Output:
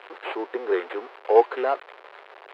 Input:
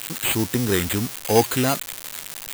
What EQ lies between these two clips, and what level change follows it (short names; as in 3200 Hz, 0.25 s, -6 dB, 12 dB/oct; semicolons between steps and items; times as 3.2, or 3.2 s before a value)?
elliptic high-pass 390 Hz, stop band 70 dB; band-pass 600 Hz, Q 0.6; air absorption 390 m; +4.0 dB